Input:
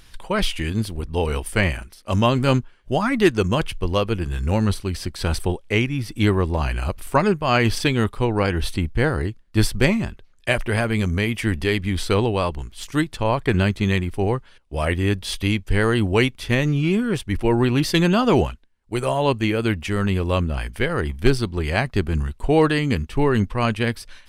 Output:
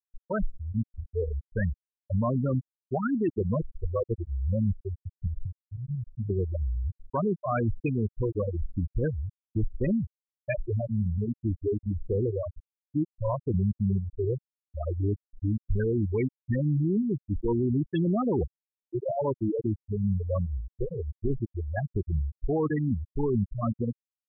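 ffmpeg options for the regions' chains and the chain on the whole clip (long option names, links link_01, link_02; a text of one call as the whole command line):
ffmpeg -i in.wav -filter_complex "[0:a]asettb=1/sr,asplit=3[link_01][link_02][link_03];[link_01]atrim=end=5.274[link_04];[link_02]atrim=start=5.27:end=6.3,asetpts=PTS-STARTPTS,afade=type=in:duration=0.004:curve=qsin,afade=type=out:start_time=1.026:duration=0.004:curve=qsin,bass=frequency=250:gain=7,treble=frequency=4000:gain=-2,acompressor=threshold=-21dB:ratio=10:attack=3.2:release=140:knee=1:detection=peak[link_05];[link_03]atrim=start=6.296[link_06];[link_04][link_05]acrossfade=duration=0.004:curve1=hsin:curve2=qsin[link_07];[link_07][link_06]acrossfade=duration=0.004:curve1=qsin:curve2=hsin,afftfilt=real='re*gte(hypot(re,im),0.501)':imag='im*gte(hypot(re,im),0.501)':win_size=1024:overlap=0.75,alimiter=limit=-15dB:level=0:latency=1:release=13,volume=-4dB" out.wav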